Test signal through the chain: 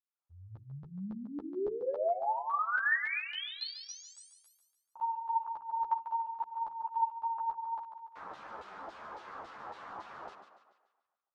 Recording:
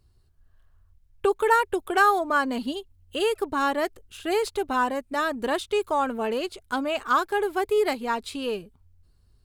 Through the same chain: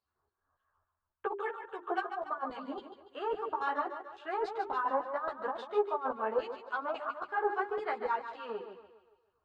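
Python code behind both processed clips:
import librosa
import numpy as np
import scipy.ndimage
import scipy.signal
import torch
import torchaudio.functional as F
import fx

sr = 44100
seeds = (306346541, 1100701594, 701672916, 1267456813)

y = fx.filter_lfo_bandpass(x, sr, shape='saw_down', hz=3.6, low_hz=760.0, high_hz=4000.0, q=1.5)
y = scipy.signal.sosfilt(scipy.signal.butter(2, 5300.0, 'lowpass', fs=sr, output='sos'), y)
y = fx.high_shelf_res(y, sr, hz=1700.0, db=-12.5, q=1.5)
y = fx.over_compress(y, sr, threshold_db=-31.0, ratio=-0.5)
y = fx.hum_notches(y, sr, base_hz=50, count=8)
y = fx.echo_thinned(y, sr, ms=144, feedback_pct=47, hz=190.0, wet_db=-8.5)
y = fx.ensemble(y, sr)
y = y * librosa.db_to_amplitude(1.5)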